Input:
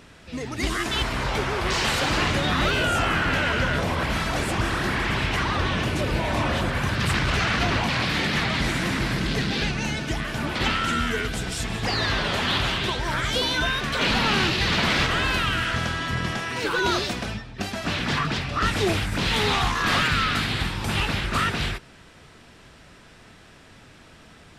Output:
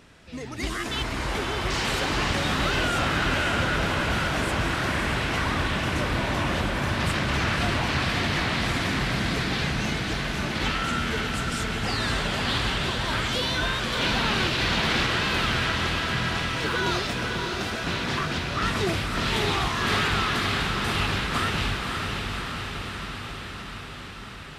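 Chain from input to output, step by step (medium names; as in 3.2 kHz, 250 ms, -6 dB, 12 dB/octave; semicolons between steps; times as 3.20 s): echo that smears into a reverb 574 ms, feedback 72%, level -4 dB; trim -4 dB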